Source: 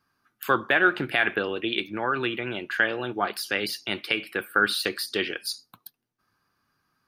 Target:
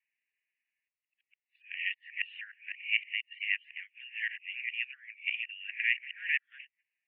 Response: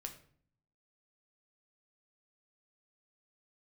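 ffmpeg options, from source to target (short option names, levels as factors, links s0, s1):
-af "areverse,asuperpass=centerf=2300:order=12:qfactor=2.2,volume=0.891"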